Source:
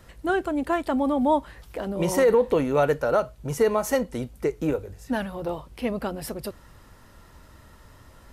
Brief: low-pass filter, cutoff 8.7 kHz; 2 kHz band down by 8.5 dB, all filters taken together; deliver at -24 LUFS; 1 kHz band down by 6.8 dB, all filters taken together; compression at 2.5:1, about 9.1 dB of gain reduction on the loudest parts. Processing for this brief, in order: low-pass 8.7 kHz; peaking EQ 1 kHz -7 dB; peaking EQ 2 kHz -8.5 dB; compression 2.5:1, threshold -31 dBFS; trim +9.5 dB

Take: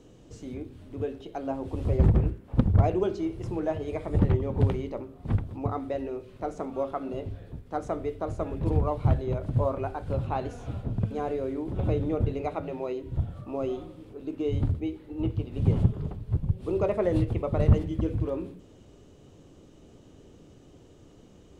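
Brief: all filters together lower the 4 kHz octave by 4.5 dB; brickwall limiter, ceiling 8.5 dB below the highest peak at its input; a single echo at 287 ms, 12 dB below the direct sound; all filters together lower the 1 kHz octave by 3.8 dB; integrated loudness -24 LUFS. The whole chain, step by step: peaking EQ 1 kHz -5.5 dB; peaking EQ 4 kHz -6 dB; peak limiter -19.5 dBFS; delay 287 ms -12 dB; trim +8 dB

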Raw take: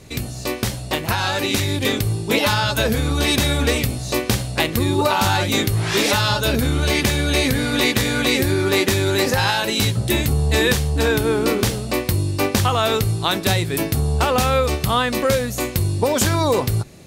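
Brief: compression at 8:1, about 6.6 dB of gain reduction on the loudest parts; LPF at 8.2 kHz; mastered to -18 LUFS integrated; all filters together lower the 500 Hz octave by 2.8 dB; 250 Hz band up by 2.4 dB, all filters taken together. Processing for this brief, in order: low-pass 8.2 kHz; peaking EQ 250 Hz +4.5 dB; peaking EQ 500 Hz -5 dB; compression 8:1, threshold -20 dBFS; trim +6.5 dB

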